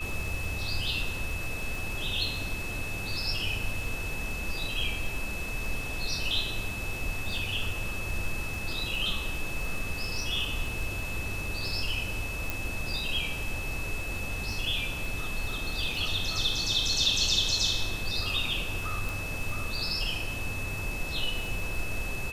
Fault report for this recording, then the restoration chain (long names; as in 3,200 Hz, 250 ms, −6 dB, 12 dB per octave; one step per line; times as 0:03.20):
surface crackle 25 per second −35 dBFS
whistle 2,600 Hz −36 dBFS
0:12.50: click
0:19.09: click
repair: click removal
notch filter 2,600 Hz, Q 30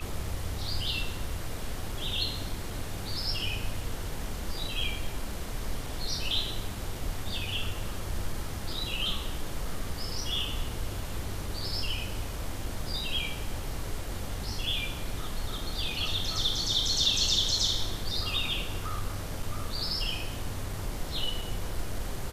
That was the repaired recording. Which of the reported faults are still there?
none of them is left